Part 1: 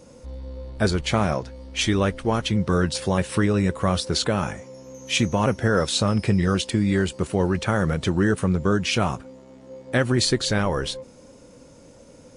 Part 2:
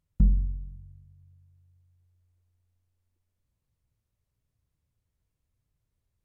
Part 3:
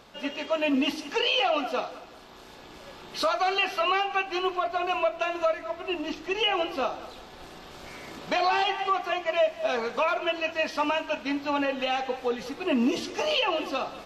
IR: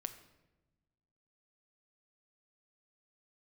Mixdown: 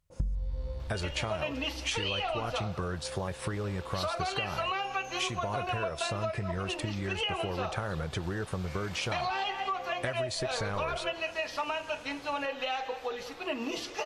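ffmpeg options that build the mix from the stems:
-filter_complex "[0:a]acompressor=threshold=-23dB:ratio=6,adynamicequalizer=threshold=0.00501:dfrequency=1900:dqfactor=0.7:tfrequency=1900:tqfactor=0.7:attack=5:release=100:ratio=0.375:range=3.5:mode=cutabove:tftype=highshelf,adelay=100,volume=-1.5dB[a];[1:a]volume=3dB[b];[2:a]bandreject=f=60:t=h:w=6,bandreject=f=120:t=h:w=6,bandreject=f=180:t=h:w=6,bandreject=f=240:t=h:w=6,bandreject=f=300:t=h:w=6,bandreject=f=360:t=h:w=6,bandreject=f=420:t=h:w=6,bandreject=f=480:t=h:w=6,adelay=800,volume=-2.5dB[c];[a][b][c]amix=inputs=3:normalize=0,equalizer=f=240:w=1.2:g=-10,acompressor=threshold=-28dB:ratio=16"

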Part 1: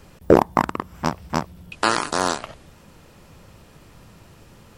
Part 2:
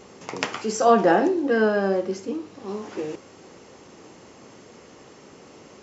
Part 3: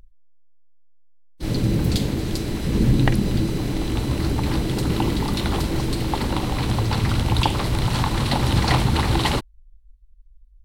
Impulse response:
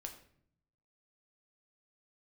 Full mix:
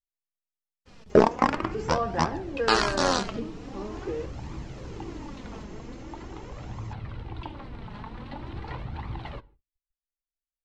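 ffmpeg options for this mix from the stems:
-filter_complex "[0:a]lowpass=f=5.6k:w=0.5412,lowpass=f=5.6k:w=1.3066,aemphasis=mode=production:type=50kf,adelay=850,volume=-2.5dB,asplit=2[a][b];[b]volume=-5.5dB[c];[1:a]acrossover=split=910|2200[d][e][f];[d]acompressor=threshold=-29dB:ratio=4[g];[e]acompressor=threshold=-32dB:ratio=4[h];[f]acompressor=threshold=-57dB:ratio=4[i];[g][h][i]amix=inputs=3:normalize=0,adelay=1100,volume=2dB[j];[2:a]lowpass=2.3k,volume=-14.5dB,asplit=2[k][l];[l]volume=-10dB[m];[3:a]atrim=start_sample=2205[n];[c][m]amix=inputs=2:normalize=0[o];[o][n]afir=irnorm=-1:irlink=0[p];[a][j][k][p]amix=inputs=4:normalize=0,agate=range=-37dB:threshold=-51dB:ratio=16:detection=peak,flanger=delay=0.8:depth=4.1:regen=34:speed=0.44:shape=triangular"

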